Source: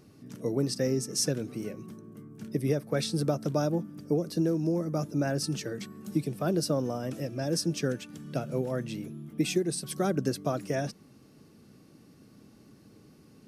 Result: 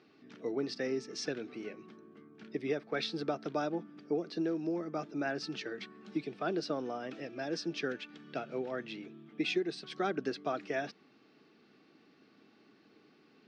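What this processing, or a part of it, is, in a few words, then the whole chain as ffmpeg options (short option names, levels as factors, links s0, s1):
phone earpiece: -af "highpass=430,equalizer=f=550:t=q:w=4:g=-10,equalizer=f=1000:t=q:w=4:g=-6,equalizer=f=2700:t=q:w=4:g=4,lowpass=f=4000:w=0.5412,lowpass=f=4000:w=1.3066,equalizer=f=2800:w=5.6:g=-5,volume=1.19"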